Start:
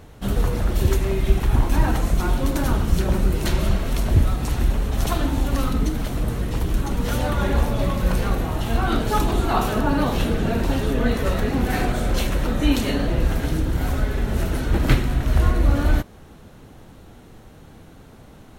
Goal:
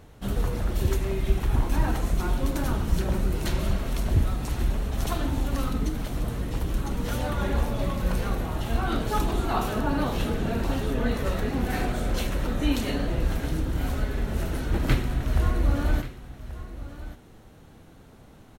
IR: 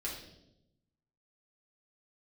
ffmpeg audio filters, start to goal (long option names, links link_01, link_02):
-af "aecho=1:1:1133:0.178,volume=-5.5dB"